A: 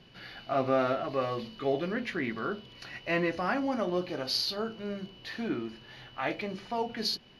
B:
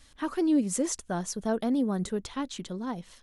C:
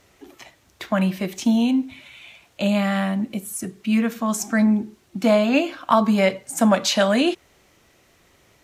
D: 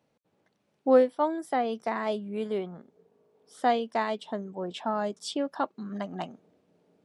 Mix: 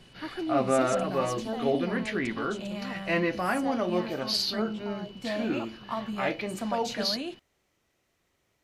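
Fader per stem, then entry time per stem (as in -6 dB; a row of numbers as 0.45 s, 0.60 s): +2.0 dB, -7.0 dB, -16.5 dB, -13.5 dB; 0.00 s, 0.00 s, 0.00 s, 0.00 s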